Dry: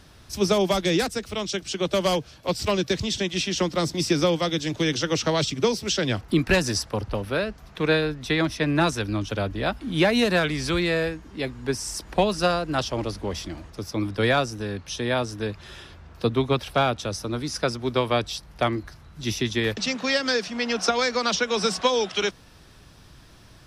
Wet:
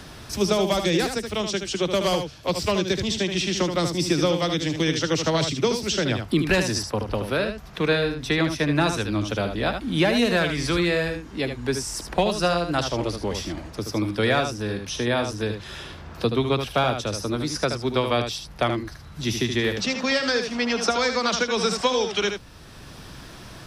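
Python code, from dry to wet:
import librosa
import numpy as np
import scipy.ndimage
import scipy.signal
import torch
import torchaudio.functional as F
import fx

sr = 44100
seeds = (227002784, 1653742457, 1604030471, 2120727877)

y = x + 10.0 ** (-7.5 / 20.0) * np.pad(x, (int(75 * sr / 1000.0), 0))[:len(x)]
y = fx.band_squash(y, sr, depth_pct=40)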